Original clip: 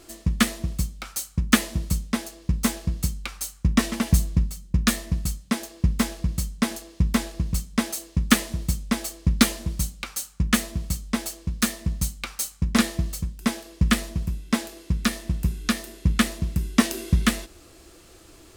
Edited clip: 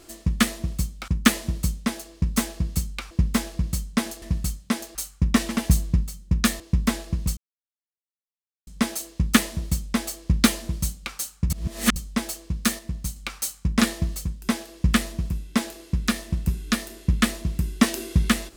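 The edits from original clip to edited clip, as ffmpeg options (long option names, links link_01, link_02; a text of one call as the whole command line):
ffmpeg -i in.wav -filter_complex "[0:a]asplit=11[link_01][link_02][link_03][link_04][link_05][link_06][link_07][link_08][link_09][link_10][link_11];[link_01]atrim=end=1.082[link_12];[link_02]atrim=start=1.348:end=3.382[link_13];[link_03]atrim=start=5.758:end=6.872[link_14];[link_04]atrim=start=5.028:end=5.762[link_15];[link_05]atrim=start=3.378:end=5.032[link_16];[link_06]atrim=start=6.868:end=7.64,asetpts=PTS-STARTPTS,afade=type=out:start_time=0.768:duration=0.004:curve=hsin,apad=pad_dur=1.3[link_17];[link_07]atrim=start=7.64:end=10.472,asetpts=PTS-STARTPTS,afade=type=in:duration=0.004:curve=hsin[link_18];[link_08]atrim=start=10.468:end=10.932,asetpts=PTS-STARTPTS,areverse[link_19];[link_09]atrim=start=10.928:end=11.762[link_20];[link_10]atrim=start=11.758:end=12.132,asetpts=PTS-STARTPTS,volume=-4.5dB[link_21];[link_11]atrim=start=12.128[link_22];[link_12][link_13]acrossfade=duration=0.004:curve1=hsin:curve2=hsin[link_23];[link_23][link_14]acrossfade=duration=0.004:curve1=hsin:curve2=hsin[link_24];[link_24][link_15]acrossfade=duration=0.004:curve1=hsin:curve2=hsin[link_25];[link_25][link_16]acrossfade=duration=0.004:curve1=hsin:curve2=hsin[link_26];[link_17][link_18]concat=n=2:v=0:a=1[link_27];[link_26][link_27]acrossfade=duration=0.004:curve1=hsin:curve2=hsin[link_28];[link_28][link_19]acrossfade=duration=0.004:curve1=hsin:curve2=hsin[link_29];[link_29][link_20]acrossfade=duration=0.004:curve1=hsin:curve2=hsin[link_30];[link_30][link_21]acrossfade=duration=0.004:curve1=hsin:curve2=hsin[link_31];[link_31][link_22]acrossfade=duration=0.004:curve1=hsin:curve2=hsin" out.wav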